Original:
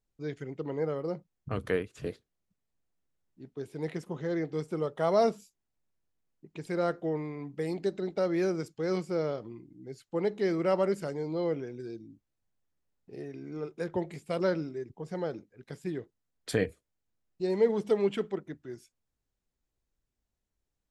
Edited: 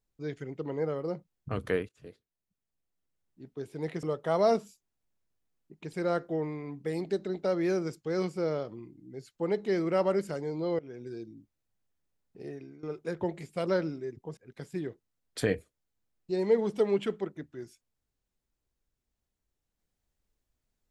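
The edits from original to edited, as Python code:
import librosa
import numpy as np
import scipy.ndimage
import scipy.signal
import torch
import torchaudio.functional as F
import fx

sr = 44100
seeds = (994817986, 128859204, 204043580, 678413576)

y = fx.edit(x, sr, fx.fade_in_from(start_s=1.89, length_s=1.63, floor_db=-17.0),
    fx.cut(start_s=4.03, length_s=0.73),
    fx.fade_in_from(start_s=11.52, length_s=0.36, curve='qsin', floor_db=-23.0),
    fx.fade_out_to(start_s=13.26, length_s=0.3, floor_db=-17.0),
    fx.cut(start_s=15.1, length_s=0.38), tone=tone)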